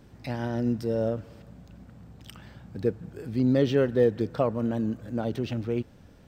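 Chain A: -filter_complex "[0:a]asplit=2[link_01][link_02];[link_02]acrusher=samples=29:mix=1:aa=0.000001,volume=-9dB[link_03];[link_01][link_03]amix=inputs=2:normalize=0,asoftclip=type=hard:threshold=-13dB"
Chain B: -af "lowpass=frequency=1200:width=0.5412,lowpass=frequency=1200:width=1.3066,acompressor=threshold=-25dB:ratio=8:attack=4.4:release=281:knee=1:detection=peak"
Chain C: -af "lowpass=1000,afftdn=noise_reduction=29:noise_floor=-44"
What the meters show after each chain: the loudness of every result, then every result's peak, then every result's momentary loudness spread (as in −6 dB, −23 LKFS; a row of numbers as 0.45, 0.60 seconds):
−26.0, −33.5, −28.0 LKFS; −13.0, −16.5, −11.0 dBFS; 19, 18, 12 LU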